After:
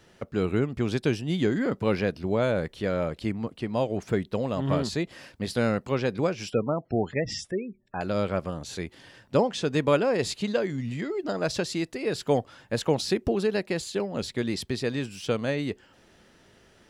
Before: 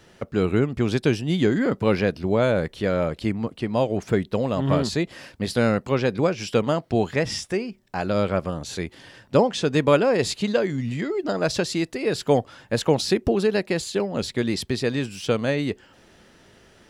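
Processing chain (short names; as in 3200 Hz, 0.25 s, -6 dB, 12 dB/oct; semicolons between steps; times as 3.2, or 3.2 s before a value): 6.5–8.01 spectral gate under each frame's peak -20 dB strong; gain -4.5 dB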